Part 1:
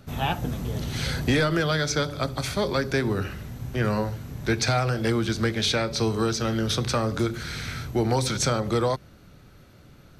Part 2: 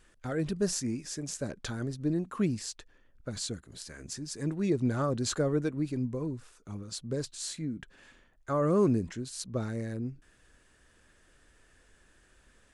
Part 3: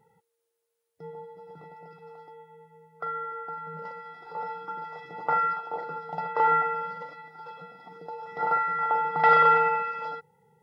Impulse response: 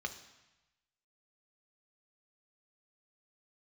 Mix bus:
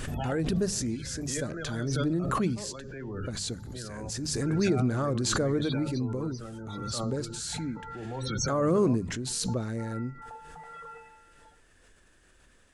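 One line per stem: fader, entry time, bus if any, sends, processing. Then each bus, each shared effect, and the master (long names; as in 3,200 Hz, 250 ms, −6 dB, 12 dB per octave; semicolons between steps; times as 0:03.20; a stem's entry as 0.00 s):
−15.0 dB, 0.00 s, bus A, no send, no processing
+1.0 dB, 0.00 s, no bus, send −18 dB, mains-hum notches 50/100/150/200 Hz
−15.0 dB, 1.40 s, bus A, send −12.5 dB, reverb reduction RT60 1.5 s
bus A: 0.0 dB, spectral peaks only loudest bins 32; brickwall limiter −34 dBFS, peak gain reduction 10.5 dB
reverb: on, RT60 1.0 s, pre-delay 3 ms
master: background raised ahead of every attack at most 22 dB per second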